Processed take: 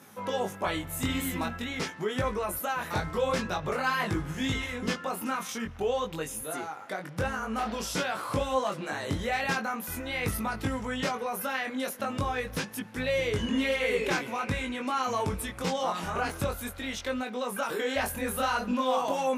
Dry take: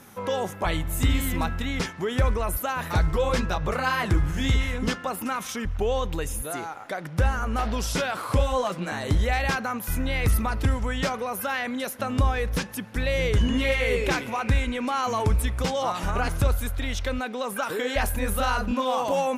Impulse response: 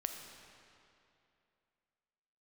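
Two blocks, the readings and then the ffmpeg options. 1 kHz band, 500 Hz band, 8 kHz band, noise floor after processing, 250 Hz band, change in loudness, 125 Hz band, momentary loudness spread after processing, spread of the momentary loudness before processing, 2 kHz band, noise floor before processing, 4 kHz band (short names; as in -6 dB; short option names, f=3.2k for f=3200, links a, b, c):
-3.0 dB, -3.0 dB, -3.0 dB, -43 dBFS, -3.5 dB, -4.5 dB, -10.0 dB, 6 LU, 6 LU, -3.0 dB, -37 dBFS, -3.0 dB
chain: -af "highpass=140,flanger=delay=19:depth=3.9:speed=0.47"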